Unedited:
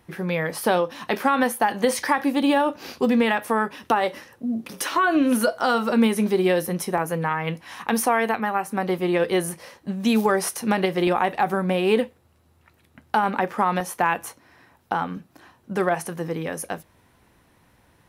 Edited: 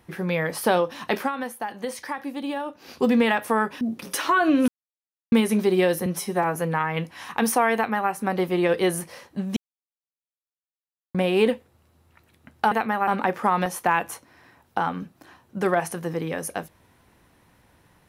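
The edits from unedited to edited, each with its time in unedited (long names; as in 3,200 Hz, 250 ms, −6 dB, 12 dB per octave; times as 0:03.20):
0:01.18–0:03.00: duck −10 dB, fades 0.14 s
0:03.81–0:04.48: remove
0:05.35–0:05.99: silence
0:06.73–0:07.06: time-stretch 1.5×
0:08.25–0:08.61: duplicate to 0:13.22
0:10.07–0:11.65: silence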